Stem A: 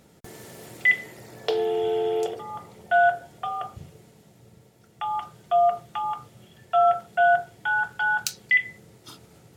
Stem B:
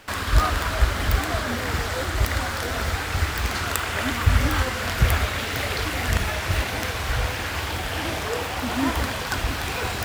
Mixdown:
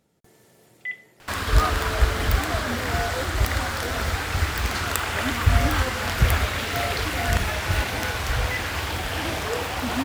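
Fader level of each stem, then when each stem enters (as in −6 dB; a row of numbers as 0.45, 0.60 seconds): −12.5, 0.0 decibels; 0.00, 1.20 seconds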